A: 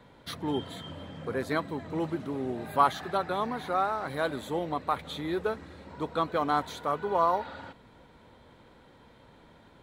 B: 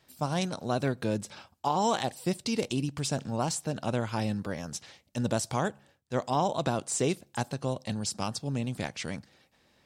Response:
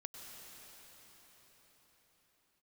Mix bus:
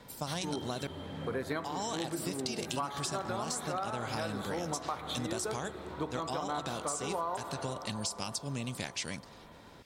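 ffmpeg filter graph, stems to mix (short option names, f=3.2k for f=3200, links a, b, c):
-filter_complex "[0:a]bandreject=f=60.4:t=h:w=4,bandreject=f=120.8:t=h:w=4,bandreject=f=181.2:t=h:w=4,bandreject=f=241.6:t=h:w=4,bandreject=f=302:t=h:w=4,bandreject=f=362.4:t=h:w=4,bandreject=f=422.8:t=h:w=4,bandreject=f=483.2:t=h:w=4,bandreject=f=543.6:t=h:w=4,bandreject=f=604:t=h:w=4,bandreject=f=664.4:t=h:w=4,bandreject=f=724.8:t=h:w=4,bandreject=f=785.2:t=h:w=4,bandreject=f=845.6:t=h:w=4,bandreject=f=906:t=h:w=4,bandreject=f=966.4:t=h:w=4,bandreject=f=1.0268k:t=h:w=4,bandreject=f=1.0872k:t=h:w=4,bandreject=f=1.1476k:t=h:w=4,bandreject=f=1.208k:t=h:w=4,bandreject=f=1.2684k:t=h:w=4,bandreject=f=1.3288k:t=h:w=4,bandreject=f=1.3892k:t=h:w=4,bandreject=f=1.4496k:t=h:w=4,bandreject=f=1.51k:t=h:w=4,bandreject=f=1.5704k:t=h:w=4,bandreject=f=1.6308k:t=h:w=4,bandreject=f=1.6912k:t=h:w=4,bandreject=f=1.7516k:t=h:w=4,bandreject=f=1.812k:t=h:w=4,bandreject=f=1.8724k:t=h:w=4,bandreject=f=1.9328k:t=h:w=4,bandreject=f=1.9932k:t=h:w=4,bandreject=f=2.0536k:t=h:w=4,bandreject=f=2.114k:t=h:w=4,bandreject=f=2.1744k:t=h:w=4,volume=0dB,asplit=2[a][b];[b]volume=-6.5dB[c];[1:a]highshelf=f=2.1k:g=11.5,acompressor=threshold=-26dB:ratio=6,volume=-4.5dB,asplit=3[d][e][f];[d]atrim=end=0.87,asetpts=PTS-STARTPTS,afade=t=out:st=0.866:d=0.004:c=hsin[g];[e]atrim=start=0.87:end=1.48,asetpts=PTS-STARTPTS,volume=0[h];[f]atrim=start=1.48,asetpts=PTS-STARTPTS,afade=t=in:d=0.004:c=hsin[i];[g][h][i]concat=n=3:v=0:a=1,asplit=2[j][k];[k]apad=whole_len=433249[l];[a][l]sidechaincompress=threshold=-38dB:ratio=8:attack=16:release=464[m];[2:a]atrim=start_sample=2205[n];[c][n]afir=irnorm=-1:irlink=0[o];[m][j][o]amix=inputs=3:normalize=0,acompressor=threshold=-31dB:ratio=10"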